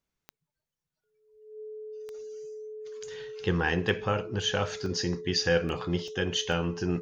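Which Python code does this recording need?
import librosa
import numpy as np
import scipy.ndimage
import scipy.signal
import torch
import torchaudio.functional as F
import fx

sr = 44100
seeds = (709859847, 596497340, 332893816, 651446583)

y = fx.fix_declick_ar(x, sr, threshold=10.0)
y = fx.notch(y, sr, hz=430.0, q=30.0)
y = fx.fix_interpolate(y, sr, at_s=(4.86, 6.08, 6.52), length_ms=1.3)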